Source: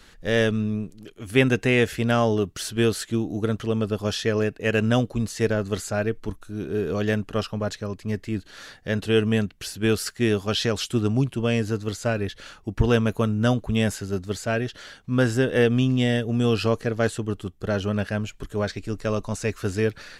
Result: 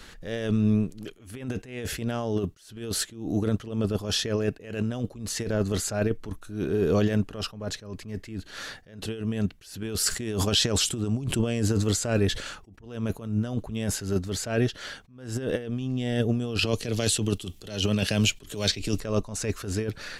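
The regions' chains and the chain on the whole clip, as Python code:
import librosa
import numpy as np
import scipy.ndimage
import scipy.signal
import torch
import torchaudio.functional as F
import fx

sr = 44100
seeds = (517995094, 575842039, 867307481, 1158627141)

y = fx.chain(x, sr, fx.peak_eq(hz=7800.0, db=6.5, octaves=0.35),
    fx.sustainer(db_per_s=94.0), at=(10.03, 12.55))
y = fx.chain(y, sr, fx.high_shelf_res(hz=2100.0, db=8.5, q=1.5),
    fx.band_squash(depth_pct=100), at=(16.59, 19.0))
y = fx.dynamic_eq(y, sr, hz=1700.0, q=0.77, threshold_db=-38.0, ratio=4.0, max_db=-4)
y = fx.over_compress(y, sr, threshold_db=-25.0, ratio=-0.5)
y = fx.attack_slew(y, sr, db_per_s=100.0)
y = y * 10.0 ** (1.5 / 20.0)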